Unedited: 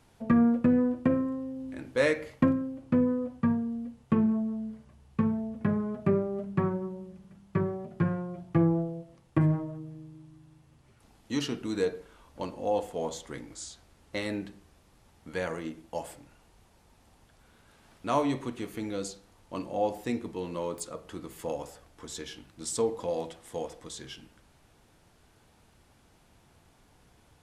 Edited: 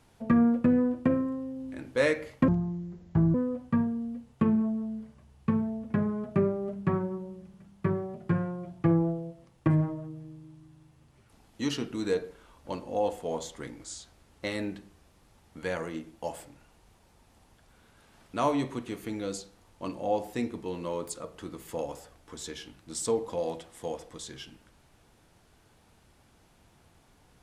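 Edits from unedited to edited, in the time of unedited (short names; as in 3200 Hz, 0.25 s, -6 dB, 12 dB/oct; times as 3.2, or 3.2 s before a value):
2.48–3.05 speed 66%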